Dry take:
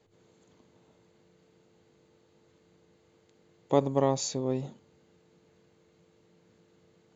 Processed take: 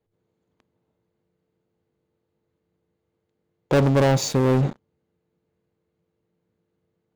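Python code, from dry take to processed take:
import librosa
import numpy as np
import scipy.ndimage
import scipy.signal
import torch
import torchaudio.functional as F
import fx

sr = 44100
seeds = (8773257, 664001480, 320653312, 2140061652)

y = fx.lowpass(x, sr, hz=2100.0, slope=6)
y = fx.low_shelf(y, sr, hz=91.0, db=9.0)
y = fx.leveller(y, sr, passes=5)
y = y * 10.0 ** (-2.5 / 20.0)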